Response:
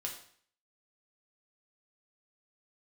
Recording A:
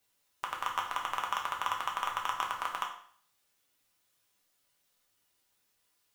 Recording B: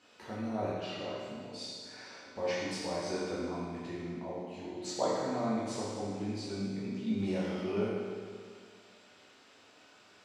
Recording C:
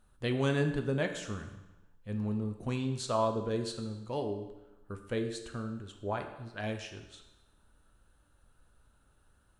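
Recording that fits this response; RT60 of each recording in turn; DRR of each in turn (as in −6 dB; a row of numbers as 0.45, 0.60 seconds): A; 0.55, 1.9, 1.0 seconds; −0.5, −9.0, 5.0 decibels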